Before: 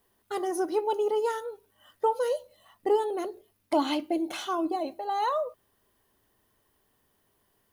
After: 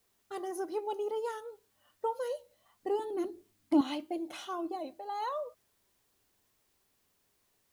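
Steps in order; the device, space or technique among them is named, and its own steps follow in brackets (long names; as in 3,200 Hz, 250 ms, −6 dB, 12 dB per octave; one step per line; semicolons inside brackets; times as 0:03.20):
0:02.99–0:03.81: low shelf with overshoot 390 Hz +7 dB, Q 3
plain cassette with noise reduction switched in (one half of a high-frequency compander decoder only; tape wow and flutter; white noise bed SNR 38 dB)
level −8 dB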